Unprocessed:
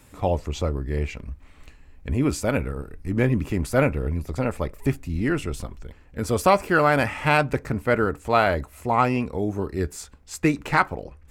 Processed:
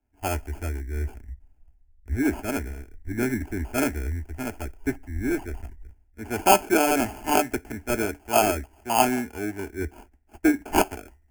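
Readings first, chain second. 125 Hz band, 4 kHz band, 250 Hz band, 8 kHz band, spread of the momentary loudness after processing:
-7.5 dB, +1.5 dB, -1.0 dB, +6.5 dB, 14 LU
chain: sample-and-hold 23×; fixed phaser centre 770 Hz, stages 8; three-band expander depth 70%

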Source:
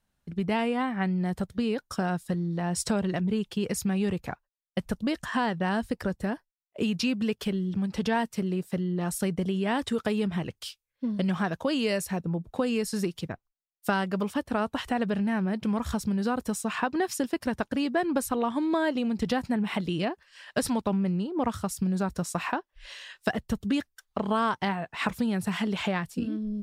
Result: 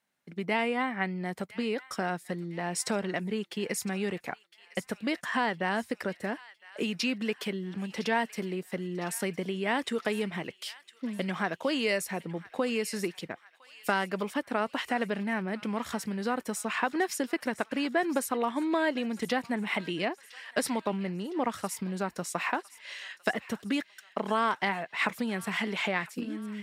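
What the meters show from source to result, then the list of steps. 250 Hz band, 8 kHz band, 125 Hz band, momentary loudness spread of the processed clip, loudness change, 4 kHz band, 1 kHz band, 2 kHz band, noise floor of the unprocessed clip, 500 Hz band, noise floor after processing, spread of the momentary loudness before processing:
-5.5 dB, -1.0 dB, -8.0 dB, 8 LU, -2.5 dB, 0.0 dB, -1.0 dB, +2.5 dB, -82 dBFS, -1.5 dB, -61 dBFS, 6 LU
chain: HPF 260 Hz 12 dB/oct; bell 2100 Hz +7.5 dB 0.41 oct; thin delay 1.009 s, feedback 53%, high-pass 1500 Hz, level -16 dB; gain -1 dB

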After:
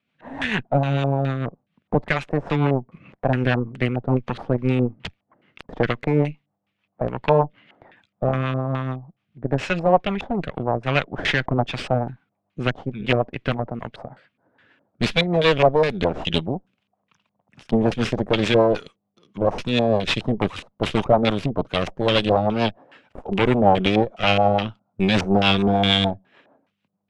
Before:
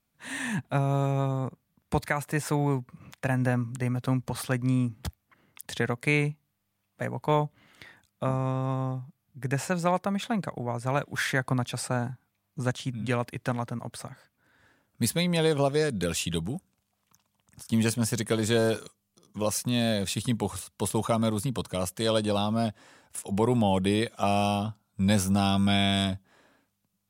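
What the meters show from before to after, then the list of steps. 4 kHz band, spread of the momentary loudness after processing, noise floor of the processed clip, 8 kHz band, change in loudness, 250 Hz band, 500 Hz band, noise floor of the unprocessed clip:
+8.0 dB, 11 LU, -77 dBFS, under -10 dB, +6.5 dB, +5.0 dB, +8.5 dB, -78 dBFS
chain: HPF 150 Hz 12 dB/oct; dynamic EQ 5700 Hz, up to +6 dB, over -46 dBFS, Q 0.95; added harmonics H 8 -14 dB, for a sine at -10 dBFS; rotary speaker horn 6.7 Hz; LFO low-pass square 2.4 Hz 770–2800 Hz; gain +6 dB

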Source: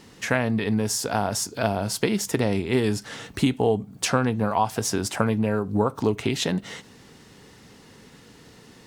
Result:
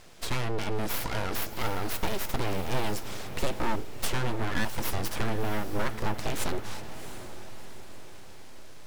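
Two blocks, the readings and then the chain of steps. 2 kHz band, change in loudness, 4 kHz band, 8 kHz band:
-4.5 dB, -8.0 dB, -5.5 dB, -9.0 dB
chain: tube stage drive 17 dB, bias 0.35; full-wave rectifier; diffused feedback echo 0.7 s, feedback 47%, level -11 dB

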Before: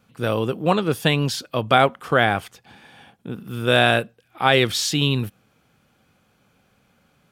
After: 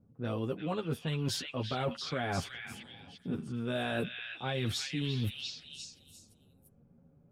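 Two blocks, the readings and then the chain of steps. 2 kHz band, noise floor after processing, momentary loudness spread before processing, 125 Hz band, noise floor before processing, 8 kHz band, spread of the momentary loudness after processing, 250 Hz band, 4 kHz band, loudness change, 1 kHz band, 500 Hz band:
-17.5 dB, -65 dBFS, 12 LU, -10.5 dB, -64 dBFS, -13.0 dB, 12 LU, -11.0 dB, -14.0 dB, -15.5 dB, -19.0 dB, -16.0 dB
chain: chorus voices 4, 0.38 Hz, delay 10 ms, depth 3 ms; low shelf 440 Hz +8.5 dB; limiter -8.5 dBFS, peak gain reduction 6.5 dB; reverse; compressor 8:1, threshold -28 dBFS, peak gain reduction 14 dB; reverse; low-pass opened by the level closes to 460 Hz, open at -26.5 dBFS; on a send: delay with a stepping band-pass 0.346 s, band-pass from 2500 Hz, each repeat 0.7 oct, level 0 dB; on the sum: gain -3 dB

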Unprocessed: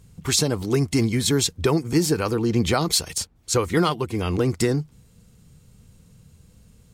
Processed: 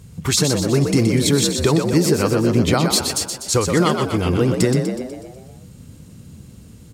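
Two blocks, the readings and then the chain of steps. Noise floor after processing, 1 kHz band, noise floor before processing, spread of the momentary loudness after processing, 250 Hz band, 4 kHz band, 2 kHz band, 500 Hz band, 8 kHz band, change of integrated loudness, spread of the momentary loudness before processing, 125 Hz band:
-43 dBFS, +3.5 dB, -55 dBFS, 5 LU, +5.0 dB, +3.5 dB, +4.0 dB, +5.0 dB, +4.0 dB, +4.5 dB, 5 LU, +5.0 dB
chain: HPF 66 Hz; low shelf 200 Hz +4 dB; in parallel at +3 dB: compressor, threshold -32 dBFS, peak gain reduction 17.5 dB; on the sum: frequency-shifting echo 0.123 s, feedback 55%, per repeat +49 Hz, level -6 dB

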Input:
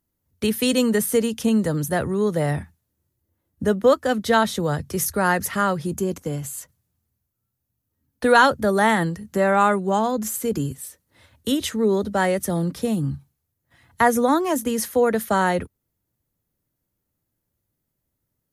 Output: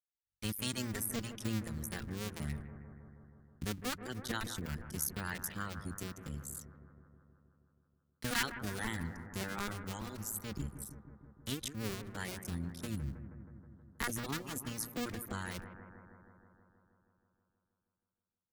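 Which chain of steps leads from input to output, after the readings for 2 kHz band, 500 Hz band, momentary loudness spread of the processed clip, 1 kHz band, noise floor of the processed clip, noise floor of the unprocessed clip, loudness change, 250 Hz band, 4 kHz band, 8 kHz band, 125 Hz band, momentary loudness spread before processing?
-16.5 dB, -26.5 dB, 17 LU, -24.0 dB, under -85 dBFS, -79 dBFS, -18.5 dB, -19.0 dB, -12.0 dB, -11.5 dB, -12.5 dB, 10 LU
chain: cycle switcher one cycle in 2, muted; gate with hold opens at -42 dBFS; reverb removal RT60 1.1 s; passive tone stack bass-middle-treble 6-0-2; analogue delay 0.159 s, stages 2048, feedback 73%, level -10.5 dB; gain +5.5 dB

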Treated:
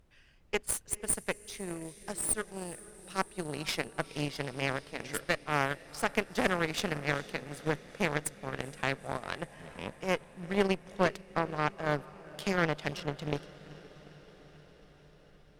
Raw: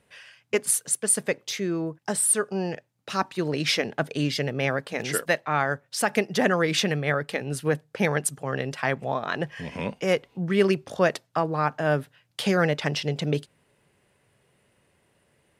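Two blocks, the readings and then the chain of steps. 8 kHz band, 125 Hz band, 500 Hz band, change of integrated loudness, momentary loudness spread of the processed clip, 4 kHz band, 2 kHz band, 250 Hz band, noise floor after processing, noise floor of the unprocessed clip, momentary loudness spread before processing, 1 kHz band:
-9.5 dB, -9.0 dB, -8.5 dB, -8.0 dB, 11 LU, -8.5 dB, -6.0 dB, -8.5 dB, -59 dBFS, -68 dBFS, 8 LU, -6.0 dB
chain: added noise brown -45 dBFS; diffused feedback echo 0.456 s, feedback 72%, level -12 dB; added harmonics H 2 -7 dB, 6 -24 dB, 7 -21 dB, 8 -28 dB, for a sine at -7 dBFS; gain -8 dB

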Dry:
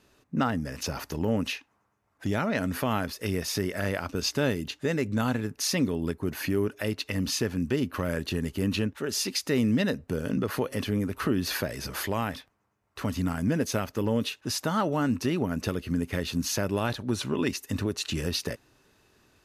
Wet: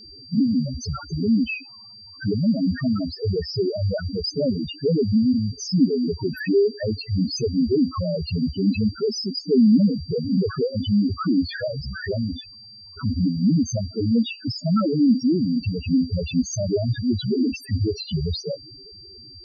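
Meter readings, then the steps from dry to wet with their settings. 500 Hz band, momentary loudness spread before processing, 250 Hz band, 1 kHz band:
+5.5 dB, 5 LU, +8.5 dB, -5.5 dB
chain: power-law curve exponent 0.7; loudest bins only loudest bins 2; whine 4700 Hz -51 dBFS; gain +9 dB

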